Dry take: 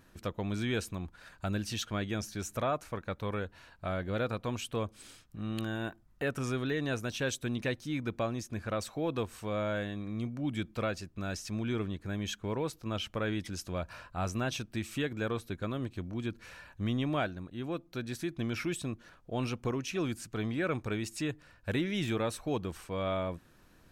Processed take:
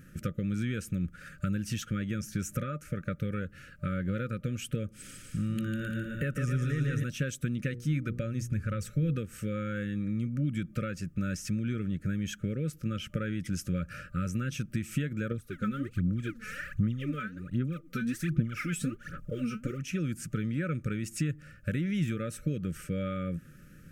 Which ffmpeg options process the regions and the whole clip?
ffmpeg -i in.wav -filter_complex "[0:a]asettb=1/sr,asplit=3[link_01][link_02][link_03];[link_01]atrim=end=4.914[link_04];[link_02]atrim=start=4.91:end=7.04,asetpts=PTS-STARTPTS,afade=type=in:duration=0.004:curve=qsin,afade=type=out:start_time=2.126:duration=0.004:curve=qsin,asubboost=boost=4:cutoff=130,aecho=1:1:150|262.5|346.9|410.2|457.6:0.631|0.398|0.251|0.158|0.1,atrim=end_sample=93933[link_05];[link_03]atrim=start=7.036[link_06];[link_04][link_05]acrossfade=duration=0.004:curve1=hsin:curve2=qsin[link_07];[link_07][link_06]acrossfade=duration=0.004:curve1=qsin:curve2=hsin,asettb=1/sr,asplit=3[link_08][link_09][link_10];[link_08]atrim=end=7.694[link_11];[link_09]atrim=start=7.69:end=9.16,asetpts=PTS-STARTPTS,afade=type=in:duration=0.004:curve=qsin,afade=type=out:start_time=1.466:duration=0.004:curve=qsin,bandreject=frequency=60:width_type=h:width=6,bandreject=frequency=120:width_type=h:width=6,bandreject=frequency=180:width_type=h:width=6,bandreject=frequency=240:width_type=h:width=6,bandreject=frequency=300:width_type=h:width=6,bandreject=frequency=360:width_type=h:width=6,bandreject=frequency=420:width_type=h:width=6,bandreject=frequency=480:width_type=h:width=6,asubboost=boost=7.5:cutoff=140[link_12];[link_10]atrim=start=9.156[link_13];[link_11][link_12]acrossfade=duration=0.004:curve1=hsin:curve2=qsin[link_14];[link_14][link_13]acrossfade=duration=0.004:curve1=qsin:curve2=hsin,asettb=1/sr,asplit=3[link_15][link_16][link_17];[link_15]atrim=end=15.314[link_18];[link_16]atrim=start=15.31:end=19.82,asetpts=PTS-STARTPTS,afade=type=in:duration=0.004:curve=qsin,afade=type=out:start_time=4.506:duration=0.004:curve=qsin,equalizer=frequency=980:width_type=o:width=0.64:gain=12.5,aphaser=in_gain=1:out_gain=1:delay=4.7:decay=0.76:speed=1.3:type=sinusoidal[link_19];[link_17]atrim=start=19.816[link_20];[link_18][link_19]acrossfade=duration=0.004:curve1=hsin:curve2=qsin[link_21];[link_21][link_20]acrossfade=duration=0.004:curve1=qsin:curve2=hsin,acompressor=threshold=-37dB:ratio=6,equalizer=frequency=160:width_type=o:width=0.67:gain=11,equalizer=frequency=400:width_type=o:width=0.67:gain=-6,equalizer=frequency=4000:width_type=o:width=0.67:gain=-11,afftfilt=real='re*(1-between(b*sr/4096,600,1200))':imag='im*(1-between(b*sr/4096,600,1200))':win_size=4096:overlap=0.75,volume=6.5dB" out.wav

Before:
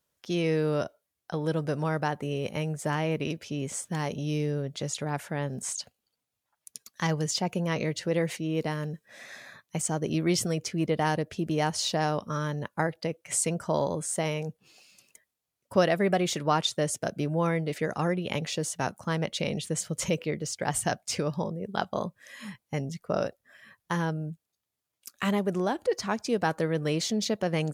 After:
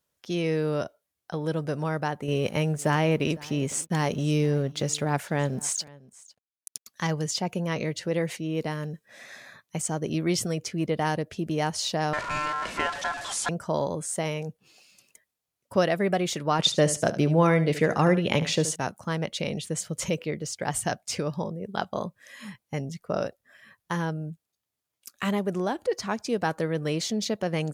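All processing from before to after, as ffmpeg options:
ffmpeg -i in.wav -filter_complex "[0:a]asettb=1/sr,asplit=3[link_01][link_02][link_03];[link_01]atrim=end=2.284[link_04];[link_02]atrim=start=2.28:end=6.86,asetpts=PTS-STARTPTS,afade=type=in:duration=0.004:curve=qsin,afade=type=out:start_time=4.576:duration=0.004:curve=qsin,acontrast=38,aeval=exprs='sgn(val(0))*max(abs(val(0))-0.00266,0)':channel_layout=same,aecho=1:1:504:0.075,atrim=end_sample=201978[link_05];[link_03]atrim=start=6.856[link_06];[link_04][link_05]acrossfade=duration=0.004:curve1=hsin:curve2=qsin[link_07];[link_07][link_06]acrossfade=duration=0.004:curve1=qsin:curve2=hsin,asettb=1/sr,asplit=3[link_08][link_09][link_10];[link_08]atrim=end=12.134[link_11];[link_09]atrim=start=12.13:end=13.49,asetpts=PTS-STARTPTS,afade=type=in:duration=0.004:curve=qsin,afade=type=out:start_time=1.356:duration=0.004:curve=qsin,aeval=exprs='val(0)+0.5*0.0473*sgn(val(0))':channel_layout=same,lowpass=frequency=8000:width=0.5412,lowpass=frequency=8000:width=1.3066,aeval=exprs='val(0)*sin(2*PI*1200*n/s)':channel_layout=same[link_12];[link_10]atrim=start=13.486[link_13];[link_11][link_12]acrossfade=duration=0.004:curve1=hsin:curve2=qsin[link_14];[link_14][link_13]acrossfade=duration=0.004:curve1=qsin:curve2=hsin,asettb=1/sr,asplit=3[link_15][link_16][link_17];[link_15]atrim=end=16.594[link_18];[link_16]atrim=start=16.59:end=18.76,asetpts=PTS-STARTPTS,afade=type=in:duration=0.004:curve=qsin,afade=type=out:start_time=2.166:duration=0.004:curve=qsin,highshelf=frequency=11000:gain=-9,acontrast=71,aecho=1:1:74|148:0.211|0.0359,atrim=end_sample=95697[link_19];[link_17]atrim=start=18.756[link_20];[link_18][link_19]acrossfade=duration=0.004:curve1=hsin:curve2=qsin[link_21];[link_21][link_20]acrossfade=duration=0.004:curve1=qsin:curve2=hsin" out.wav

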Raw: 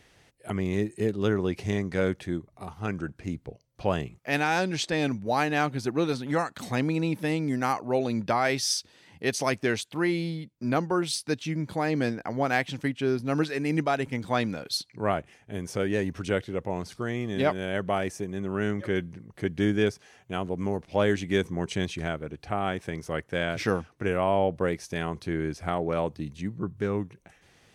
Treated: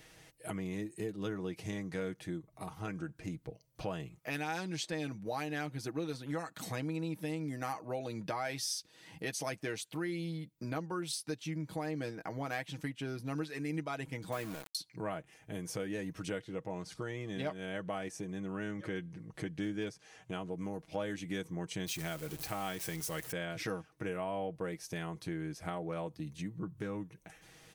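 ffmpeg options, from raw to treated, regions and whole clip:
ffmpeg -i in.wav -filter_complex "[0:a]asettb=1/sr,asplit=3[link_01][link_02][link_03];[link_01]atrim=end=14.324[link_04];[link_02]atrim=start=14.32:end=14.75,asetpts=PTS-STARTPTS,afade=type=in:duration=0.004:curve=qsin,afade=type=out:start_time=0.426:duration=0.004:curve=qsin,lowpass=frequency=3000:width=0.5412,lowpass=frequency=3000:width=1.3066,aeval=exprs='val(0)*gte(abs(val(0)),0.0251)':channel_layout=same[link_05];[link_03]atrim=start=14.746[link_06];[link_04][link_05]acrossfade=duration=0.004:curve1=hsin:curve2=qsin[link_07];[link_07][link_06]acrossfade=duration=0.004:curve1=qsin:curve2=hsin,asettb=1/sr,asplit=3[link_08][link_09][link_10];[link_08]atrim=end=16.374[link_11];[link_09]atrim=start=16.37:end=20.53,asetpts=PTS-STARTPTS,afade=type=in:duration=0.004:curve=qsin,afade=type=out:start_time=4.156:duration=0.004:curve=qsin,lowpass=9100,asoftclip=type=hard:threshold=-13.5dB[link_12];[link_10]atrim=start=20.526[link_13];[link_11][link_12]acrossfade=duration=0.004:curve1=hsin:curve2=qsin[link_14];[link_14][link_13]acrossfade=duration=0.004:curve1=qsin:curve2=hsin,asettb=1/sr,asplit=3[link_15][link_16][link_17];[link_15]atrim=end=21.864[link_18];[link_16]atrim=start=21.86:end=23.32,asetpts=PTS-STARTPTS,afade=type=in:duration=0.004:curve=qsin,afade=type=out:start_time=1.456:duration=0.004:curve=qsin,aeval=exprs='val(0)+0.5*0.01*sgn(val(0))':channel_layout=same,highshelf=frequency=2800:gain=10.5[link_19];[link_17]atrim=start=23.316[link_20];[link_18][link_19]acrossfade=duration=0.004:curve1=hsin:curve2=qsin[link_21];[link_21][link_20]acrossfade=duration=0.004:curve1=qsin:curve2=hsin,highshelf=frequency=9300:gain=10.5,aecho=1:1:6.3:0.58,acompressor=threshold=-40dB:ratio=2.5,volume=-1dB" out.wav

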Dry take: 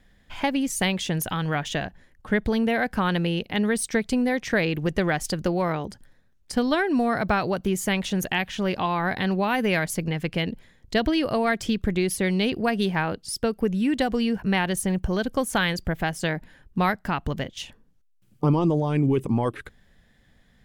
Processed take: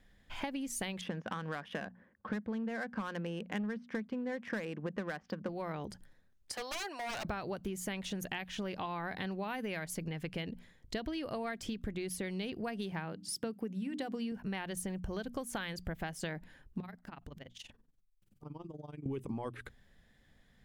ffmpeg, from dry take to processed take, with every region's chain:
ffmpeg -i in.wav -filter_complex "[0:a]asettb=1/sr,asplit=3[link_01][link_02][link_03];[link_01]atrim=end=1.014[link_04];[link_02]atrim=start=1.01:end=5.49,asetpts=PTS-STARTPTS,afade=type=in:duration=0.004:curve=qsin,afade=type=out:start_time=4.476:duration=0.004:curve=qsin,highpass=120,equalizer=frequency=130:width_type=q:width=4:gain=-7,equalizer=frequency=210:width_type=q:width=4:gain=10,equalizer=frequency=520:width_type=q:width=4:gain=6,equalizer=frequency=1100:width_type=q:width=4:gain=7,equalizer=frequency=1600:width_type=q:width=4:gain=6,equalizer=frequency=4000:width_type=q:width=4:gain=-7,lowpass=frequency=5100:width=0.5412,lowpass=frequency=5100:width=1.3066,asoftclip=type=hard:threshold=-11dB,adynamicsmooth=sensitivity=3:basefreq=2000[link_05];[link_03]atrim=start=5.486[link_06];[link_04][link_05]acrossfade=duration=0.004:curve1=hsin:curve2=qsin[link_07];[link_07][link_06]acrossfade=duration=0.004:curve1=qsin:curve2=hsin,asettb=1/sr,asplit=3[link_08][link_09][link_10];[link_08]atrim=end=6.524[link_11];[link_09]atrim=start=6.52:end=7.25,asetpts=PTS-STARTPTS,afade=type=in:duration=0.004:curve=qsin,afade=type=out:start_time=0.726:duration=0.004:curve=qsin,highpass=frequency=540:width=0.5412,highpass=frequency=540:width=1.3066,aeval=exprs='0.0447*(abs(mod(val(0)/0.0447+3,4)-2)-1)':channel_layout=same[link_12];[link_10]atrim=start=7.246[link_13];[link_11][link_12]acrossfade=duration=0.004:curve1=hsin:curve2=qsin[link_14];[link_14][link_13]acrossfade=duration=0.004:curve1=qsin:curve2=hsin,asettb=1/sr,asplit=3[link_15][link_16][link_17];[link_15]atrim=end=12.924[link_18];[link_16]atrim=start=12.92:end=14.32,asetpts=PTS-STARTPTS,afade=type=in:duration=0.004:curve=qsin,afade=type=out:start_time=1.396:duration=0.004:curve=qsin,highpass=frequency=170:width_type=q:width=1.8,bandreject=frequency=50:width_type=h:width=6,bandreject=frequency=100:width_type=h:width=6,bandreject=frequency=150:width_type=h:width=6,bandreject=frequency=200:width_type=h:width=6,bandreject=frequency=250:width_type=h:width=6,bandreject=frequency=300:width_type=h:width=6[link_19];[link_17]atrim=start=14.316[link_20];[link_18][link_19]acrossfade=duration=0.004:curve1=hsin:curve2=qsin[link_21];[link_21][link_20]acrossfade=duration=0.004:curve1=qsin:curve2=hsin,asettb=1/sr,asplit=3[link_22][link_23][link_24];[link_22]atrim=end=16.804[link_25];[link_23]atrim=start=16.8:end=19.06,asetpts=PTS-STARTPTS,afade=type=in:duration=0.004:curve=qsin,afade=type=out:start_time=2.256:duration=0.004:curve=qsin,acompressor=threshold=-36dB:ratio=5:attack=3.2:release=140:knee=1:detection=peak,tremolo=f=21:d=0.889[link_26];[link_24]atrim=start=19.056[link_27];[link_25][link_26]acrossfade=duration=0.004:curve1=hsin:curve2=qsin[link_28];[link_28][link_27]acrossfade=duration=0.004:curve1=qsin:curve2=hsin,bandreject=frequency=60:width_type=h:width=6,bandreject=frequency=120:width_type=h:width=6,bandreject=frequency=180:width_type=h:width=6,bandreject=frequency=240:width_type=h:width=6,acompressor=threshold=-29dB:ratio=10,volume=-6dB" out.wav

